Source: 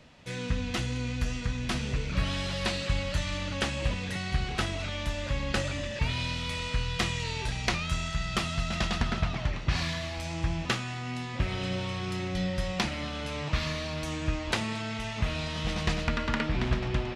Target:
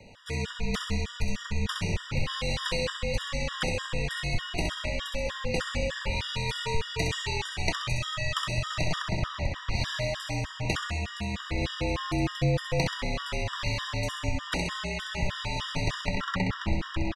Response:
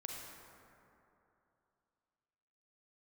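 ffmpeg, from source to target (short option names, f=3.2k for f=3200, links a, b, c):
-af "acompressor=threshold=-29dB:ratio=3,afreqshift=-44,aecho=1:1:65|130|195|260|325|390|455:0.596|0.322|0.174|0.0938|0.0506|0.0274|0.0148,afftfilt=real='re*gt(sin(2*PI*3.3*pts/sr)*(1-2*mod(floor(b*sr/1024/960),2)),0)':imag='im*gt(sin(2*PI*3.3*pts/sr)*(1-2*mod(floor(b*sr/1024/960),2)),0)':win_size=1024:overlap=0.75,volume=5dB"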